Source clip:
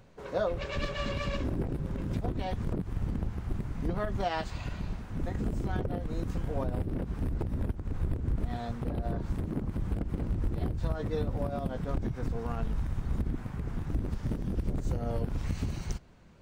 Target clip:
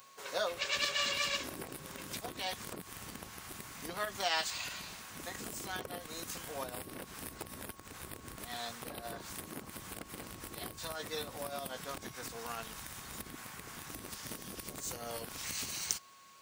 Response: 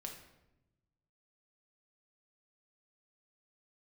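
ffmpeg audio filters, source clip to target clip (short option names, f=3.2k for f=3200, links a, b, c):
-af "aeval=exprs='val(0)+0.00126*sin(2*PI*1100*n/s)':c=same,aderivative,volume=15.5dB"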